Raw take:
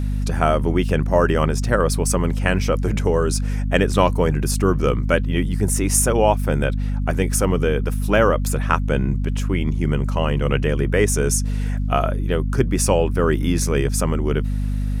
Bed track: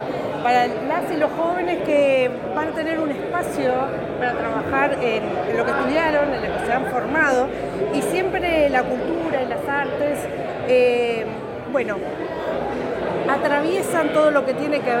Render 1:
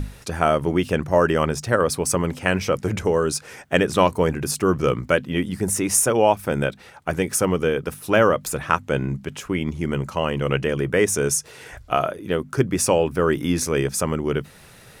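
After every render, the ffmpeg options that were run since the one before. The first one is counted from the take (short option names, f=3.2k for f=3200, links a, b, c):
-af "bandreject=f=50:t=h:w=6,bandreject=f=100:t=h:w=6,bandreject=f=150:t=h:w=6,bandreject=f=200:t=h:w=6,bandreject=f=250:t=h:w=6"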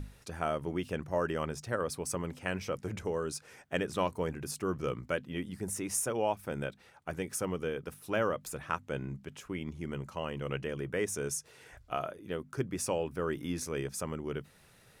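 -af "volume=-14dB"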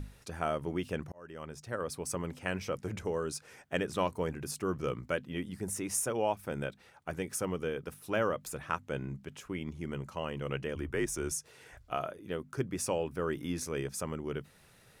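-filter_complex "[0:a]asettb=1/sr,asplit=3[a][b][c];[a]atrim=end=10.754[d];[b]atrim=start=10.75:end=11.32,asetpts=PTS-STARTPTS,afade=t=in:d=0.004:c=qsin,afade=t=out:st=0.566:d=0.004:c=qsin,afreqshift=-58[e];[c]atrim=start=11.316[f];[d][e]acrossfade=d=0.004:c1=hsin:c2=qsin[g];[g][f]acrossfade=d=0.004:c1=qsin:c2=hsin,asplit=2[h][i];[h]atrim=end=1.12,asetpts=PTS-STARTPTS,afade=t=out:st=1.116:d=0.004:c=hsin[j];[i]atrim=start=1.12,asetpts=PTS-STARTPTS,afade=t=in:d=1.37:c=qsin[k];[j][k]concat=n=2:v=0:a=1"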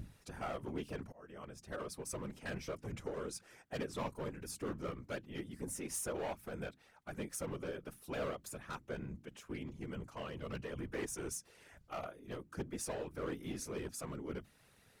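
-af "volume=29dB,asoftclip=hard,volume=-29dB,afftfilt=real='hypot(re,im)*cos(2*PI*random(0))':imag='hypot(re,im)*sin(2*PI*random(1))':win_size=512:overlap=0.75"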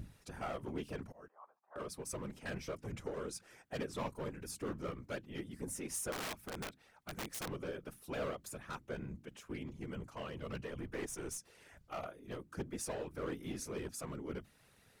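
-filter_complex "[0:a]asettb=1/sr,asplit=3[a][b][c];[a]atrim=end=1.284[d];[b]atrim=start=1.28:end=1.76,asetpts=PTS-STARTPTS,afade=t=in:d=0.004:c=qsin,afade=t=out:st=0.476:d=0.004:c=qsin,asuperpass=centerf=930:order=4:qfactor=2.3[e];[c]atrim=start=1.756[f];[d][e]acrossfade=d=0.004:c1=hsin:c2=qsin[g];[g][f]acrossfade=d=0.004:c1=qsin:c2=hsin,asettb=1/sr,asplit=3[h][i][j];[h]atrim=end=6.124[k];[i]atrim=start=6.12:end=7.48,asetpts=PTS-STARTPTS,afade=t=in:d=0.004:c=qsin,afade=t=out:st=1.356:d=0.004:c=qsin,aeval=exprs='(mod(63.1*val(0)+1,2)-1)/63.1':c=same[l];[j]atrim=start=7.476[m];[k][l]acrossfade=d=0.004:c1=hsin:c2=qsin[n];[n][m]acrossfade=d=0.004:c1=qsin:c2=hsin,asettb=1/sr,asplit=3[o][p][q];[o]atrim=end=10.704[r];[p]atrim=start=10.7:end=11.38,asetpts=PTS-STARTPTS,afade=t=in:d=0.004:c=qsin,afade=t=out:st=0.676:d=0.004:c=qsin,aeval=exprs='if(lt(val(0),0),0.708*val(0),val(0))':c=same[s];[q]atrim=start=11.376[t];[r][s]acrossfade=d=0.004:c1=hsin:c2=qsin[u];[u][t]acrossfade=d=0.004:c1=qsin:c2=hsin"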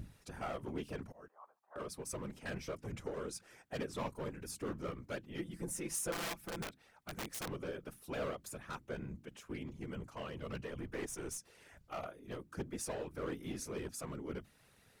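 -filter_complex "[0:a]asettb=1/sr,asplit=3[a][b][c];[a]atrim=end=5.384[d];[b]atrim=start=5.38:end=6.63,asetpts=PTS-STARTPTS,afade=t=in:d=0.004:c=qsin,afade=t=out:st=1.246:d=0.004:c=qsin,aecho=1:1:5.9:0.67,atrim=end_sample=55125[e];[c]atrim=start=6.626[f];[d][e]acrossfade=d=0.004:c1=hsin:c2=qsin[g];[g][f]acrossfade=d=0.004:c1=qsin:c2=hsin"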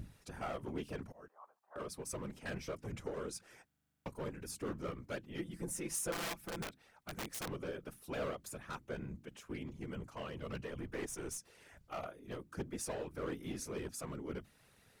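-filter_complex "[0:a]asplit=11[a][b][c][d][e][f][g][h][i][j][k];[a]atrim=end=3.702[l];[b]atrim=start=3.658:end=3.702[m];[c]atrim=start=3.658:end=3.702[n];[d]atrim=start=3.658:end=3.702[o];[e]atrim=start=3.658:end=3.702[p];[f]atrim=start=3.658:end=3.702[q];[g]atrim=start=3.658:end=3.702[r];[h]atrim=start=3.658:end=3.702[s];[i]atrim=start=3.658:end=3.702[t];[j]atrim=start=3.658:end=3.702[u];[k]atrim=start=4.058[v];[l][m]acrossfade=d=0.004:c1=hsin:c2=hsin[w];[w][n]acrossfade=d=0.004:c1=hsin:c2=hsin[x];[x][o]acrossfade=d=0.004:c1=hsin:c2=hsin[y];[y][p]acrossfade=d=0.004:c1=hsin:c2=hsin[z];[z][q]acrossfade=d=0.004:c1=hsin:c2=hsin[aa];[aa][r]acrossfade=d=0.004:c1=hsin:c2=hsin[ab];[ab][s]acrossfade=d=0.004:c1=hsin:c2=hsin[ac];[ac][t]acrossfade=d=0.004:c1=hsin:c2=hsin[ad];[ad][u]acrossfade=d=0.004:c1=hsin:c2=hsin[ae];[ae][v]acrossfade=d=0.004:c1=hsin:c2=hsin"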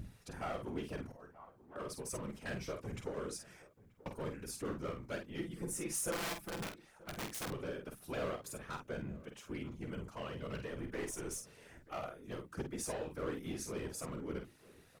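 -filter_complex "[0:a]asplit=2[a][b];[b]adelay=48,volume=-6.5dB[c];[a][c]amix=inputs=2:normalize=0,asplit=2[d][e];[e]adelay=932.9,volume=-20dB,highshelf=f=4k:g=-21[f];[d][f]amix=inputs=2:normalize=0"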